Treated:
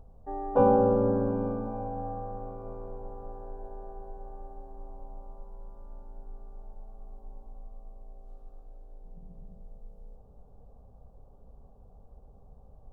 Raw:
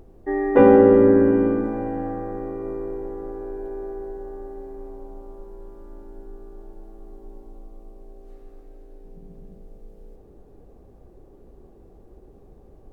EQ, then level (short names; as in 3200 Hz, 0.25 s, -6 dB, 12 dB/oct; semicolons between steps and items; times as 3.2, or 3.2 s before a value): high shelf 2400 Hz -10.5 dB; dynamic EQ 1900 Hz, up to -4 dB, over -44 dBFS, Q 1.7; fixed phaser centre 830 Hz, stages 4; -2.0 dB